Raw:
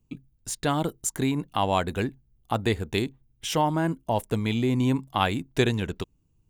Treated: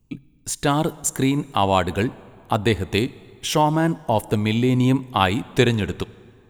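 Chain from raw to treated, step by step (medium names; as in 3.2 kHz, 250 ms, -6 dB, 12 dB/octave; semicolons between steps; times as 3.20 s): plate-style reverb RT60 2.4 s, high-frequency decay 0.7×, DRR 19.5 dB; trim +5.5 dB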